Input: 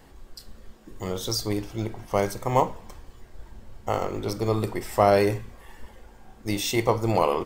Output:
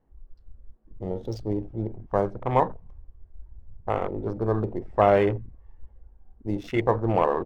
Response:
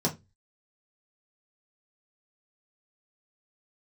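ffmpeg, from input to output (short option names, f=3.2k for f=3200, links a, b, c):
-af "adynamicsmooth=sensitivity=4:basefreq=1k,afwtdn=0.02"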